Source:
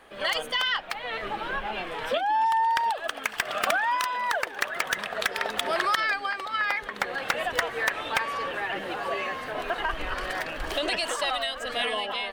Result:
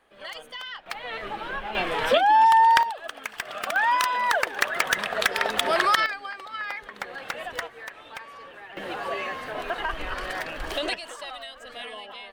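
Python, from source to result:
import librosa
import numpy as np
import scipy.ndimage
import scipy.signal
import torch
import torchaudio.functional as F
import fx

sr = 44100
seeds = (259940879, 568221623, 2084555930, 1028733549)

y = fx.gain(x, sr, db=fx.steps((0.0, -11.0), (0.86, -1.5), (1.75, 7.0), (2.83, -5.0), (3.76, 4.0), (6.06, -6.0), (7.67, -13.0), (8.77, -0.5), (10.94, -10.0)))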